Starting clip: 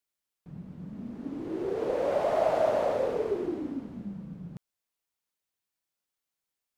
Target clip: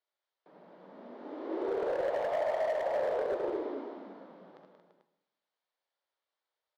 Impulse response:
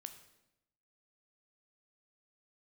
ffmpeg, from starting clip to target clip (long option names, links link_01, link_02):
-filter_complex "[0:a]asplit=2[link_01][link_02];[link_02]alimiter=level_in=0.5dB:limit=-24dB:level=0:latency=1:release=457,volume=-0.5dB,volume=1.5dB[link_03];[link_01][link_03]amix=inputs=2:normalize=0,highpass=frequency=390:width=0.5412,highpass=frequency=390:width=1.3066,equalizer=frequency=600:width_type=q:width=4:gain=5,equalizer=frequency=910:width_type=q:width=4:gain=4,equalizer=frequency=2600:width_type=q:width=4:gain=-8,lowpass=frequency=4100:width=0.5412,lowpass=frequency=4100:width=1.3066,aecho=1:1:66|79|181|229|339|441:0.266|0.422|0.355|0.335|0.266|0.211,acompressor=threshold=-22dB:ratio=4,asoftclip=type=hard:threshold=-22dB[link_04];[1:a]atrim=start_sample=2205[link_05];[link_04][link_05]afir=irnorm=-1:irlink=0"